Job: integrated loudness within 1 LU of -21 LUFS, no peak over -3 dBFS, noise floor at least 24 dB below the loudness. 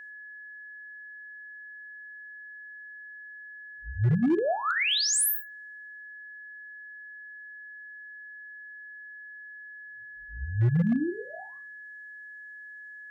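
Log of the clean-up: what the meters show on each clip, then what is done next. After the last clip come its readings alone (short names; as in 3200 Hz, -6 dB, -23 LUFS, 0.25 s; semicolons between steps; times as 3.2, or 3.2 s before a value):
clipped 0.5%; flat tops at -19.0 dBFS; steady tone 1700 Hz; tone level -42 dBFS; loudness -26.0 LUFS; peak -19.0 dBFS; loudness target -21.0 LUFS
-> clip repair -19 dBFS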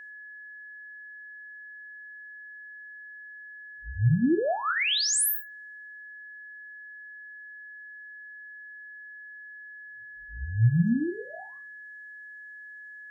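clipped 0.0%; steady tone 1700 Hz; tone level -42 dBFS
-> notch 1700 Hz, Q 30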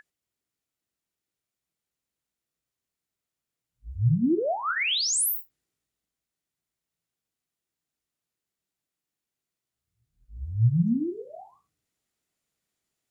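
steady tone none; loudness -25.0 LUFS; peak -13.5 dBFS; loudness target -21.0 LUFS
-> gain +4 dB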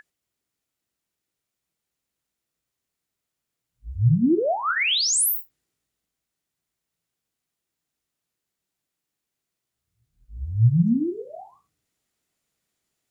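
loudness -21.0 LUFS; peak -9.5 dBFS; noise floor -84 dBFS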